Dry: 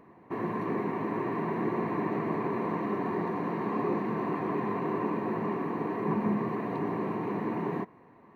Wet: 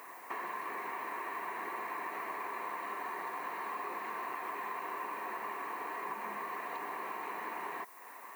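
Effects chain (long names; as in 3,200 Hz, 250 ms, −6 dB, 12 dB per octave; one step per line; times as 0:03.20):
high-pass filter 1,100 Hz 12 dB per octave
downward compressor 4 to 1, threshold −54 dBFS, peak gain reduction 16 dB
background noise violet −72 dBFS
level +14 dB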